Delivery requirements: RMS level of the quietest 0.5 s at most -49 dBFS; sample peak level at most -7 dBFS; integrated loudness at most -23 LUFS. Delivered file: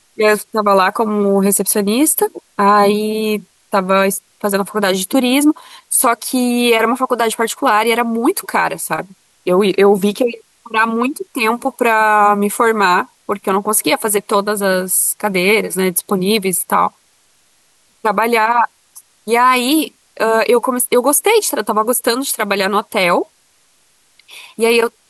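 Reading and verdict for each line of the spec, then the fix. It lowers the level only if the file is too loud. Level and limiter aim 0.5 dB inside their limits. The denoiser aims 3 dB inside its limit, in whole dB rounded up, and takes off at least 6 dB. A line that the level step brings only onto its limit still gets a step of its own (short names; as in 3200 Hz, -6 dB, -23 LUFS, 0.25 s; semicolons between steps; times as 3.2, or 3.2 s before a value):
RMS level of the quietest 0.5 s -55 dBFS: OK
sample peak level -2.5 dBFS: fail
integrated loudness -14.5 LUFS: fail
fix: gain -9 dB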